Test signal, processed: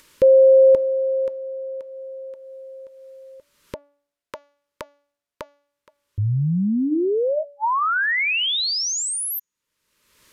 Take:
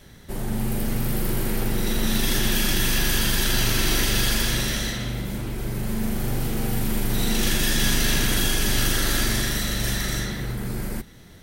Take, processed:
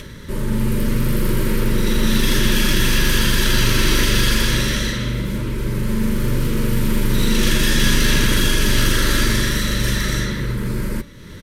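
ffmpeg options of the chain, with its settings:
-af "highshelf=f=5.7k:g=-7.5,bandreject=f=286.7:t=h:w=4,bandreject=f=573.4:t=h:w=4,bandreject=f=860.1:t=h:w=4,bandreject=f=1.1468k:t=h:w=4,bandreject=f=1.4335k:t=h:w=4,bandreject=f=1.7202k:t=h:w=4,bandreject=f=2.0069k:t=h:w=4,bandreject=f=2.2936k:t=h:w=4,bandreject=f=2.5803k:t=h:w=4,bandreject=f=2.867k:t=h:w=4,bandreject=f=3.1537k:t=h:w=4,bandreject=f=3.4404k:t=h:w=4,bandreject=f=3.7271k:t=h:w=4,bandreject=f=4.0138k:t=h:w=4,bandreject=f=4.3005k:t=h:w=4,bandreject=f=4.5872k:t=h:w=4,bandreject=f=4.8739k:t=h:w=4,bandreject=f=5.1606k:t=h:w=4,bandreject=f=5.4473k:t=h:w=4,bandreject=f=5.734k:t=h:w=4,bandreject=f=6.0207k:t=h:w=4,bandreject=f=6.3074k:t=h:w=4,bandreject=f=6.5941k:t=h:w=4,bandreject=f=6.8808k:t=h:w=4,acompressor=mode=upward:threshold=-34dB:ratio=2.5,asuperstop=centerf=740:order=20:qfactor=3,aresample=32000,aresample=44100,volume=6.5dB"

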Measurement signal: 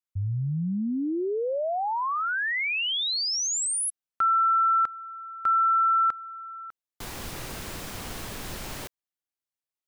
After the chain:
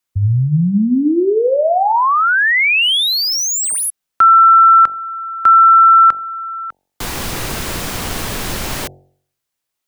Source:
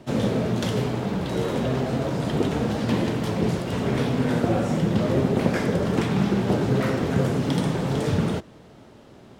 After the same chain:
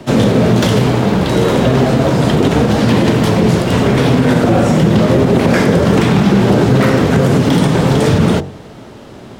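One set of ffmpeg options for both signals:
-filter_complex "[0:a]bandreject=f=46.65:t=h:w=4,bandreject=f=93.3:t=h:w=4,bandreject=f=139.95:t=h:w=4,bandreject=f=186.6:t=h:w=4,bandreject=f=233.25:t=h:w=4,bandreject=f=279.9:t=h:w=4,bandreject=f=326.55:t=h:w=4,bandreject=f=373.2:t=h:w=4,bandreject=f=419.85:t=h:w=4,bandreject=f=466.5:t=h:w=4,bandreject=f=513.15:t=h:w=4,bandreject=f=559.8:t=h:w=4,bandreject=f=606.45:t=h:w=4,bandreject=f=653.1:t=h:w=4,bandreject=f=699.75:t=h:w=4,bandreject=f=746.4:t=h:w=4,bandreject=f=793.05:t=h:w=4,bandreject=f=839.7:t=h:w=4,bandreject=f=886.35:t=h:w=4,acrossover=split=170|2900[a][b][c];[c]asoftclip=type=hard:threshold=-32dB[d];[a][b][d]amix=inputs=3:normalize=0,alimiter=level_in=15.5dB:limit=-1dB:release=50:level=0:latency=1,volume=-1dB"

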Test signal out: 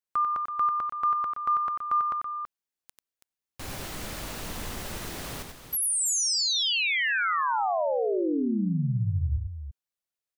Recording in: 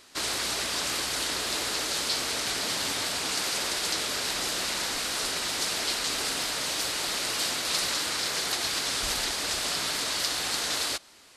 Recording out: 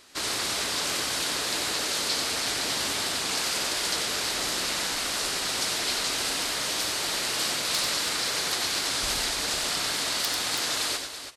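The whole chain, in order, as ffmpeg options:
-af "aeval=exprs='(mod(4.47*val(0)+1,2)-1)/4.47':c=same,aecho=1:1:93|329:0.501|0.335"

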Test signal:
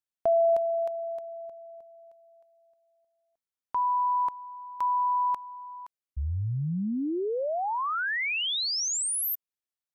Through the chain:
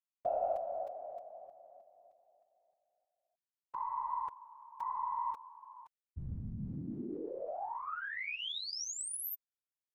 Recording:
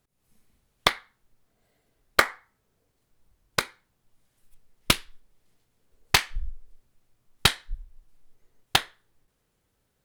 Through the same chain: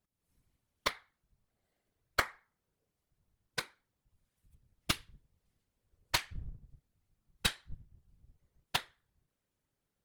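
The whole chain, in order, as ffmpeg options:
-af "aeval=exprs='0.668*(cos(1*acos(clip(val(0)/0.668,-1,1)))-cos(1*PI/2))+0.168*(cos(2*acos(clip(val(0)/0.668,-1,1)))-cos(2*PI/2))+0.0168*(cos(8*acos(clip(val(0)/0.668,-1,1)))-cos(8*PI/2))':c=same,afftfilt=real='hypot(re,im)*cos(2*PI*random(0))':imag='hypot(re,im)*sin(2*PI*random(1))':win_size=512:overlap=0.75,volume=-5.5dB"

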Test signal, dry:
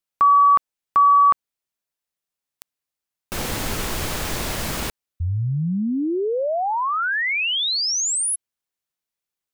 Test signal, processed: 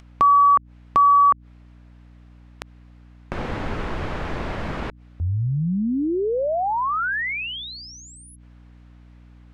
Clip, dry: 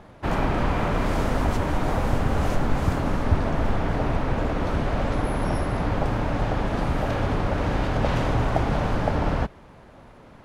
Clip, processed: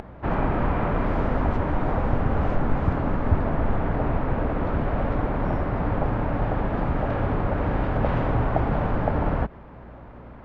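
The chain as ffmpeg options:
-af "lowpass=1.9k,acompressor=mode=upward:threshold=-44dB:ratio=2.5:attack=50:release=51:knee=2.83:detection=peak,aeval=exprs='val(0)+0.00501*(sin(2*PI*60*n/s)+sin(2*PI*2*60*n/s)/2+sin(2*PI*3*60*n/s)/3+sin(2*PI*4*60*n/s)/4+sin(2*PI*5*60*n/s)/5)':c=same"

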